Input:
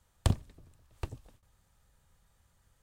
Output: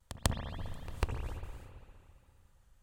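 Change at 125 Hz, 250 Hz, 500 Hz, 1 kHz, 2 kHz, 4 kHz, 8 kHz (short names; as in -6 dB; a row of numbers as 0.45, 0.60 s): -3.5, -2.0, +1.5, +3.5, +6.0, +3.0, +4.0 dB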